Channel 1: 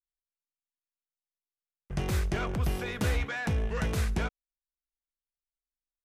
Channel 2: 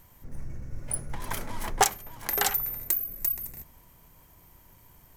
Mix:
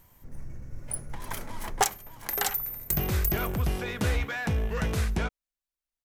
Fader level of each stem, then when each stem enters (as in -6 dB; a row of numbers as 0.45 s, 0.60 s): +1.5 dB, -2.5 dB; 1.00 s, 0.00 s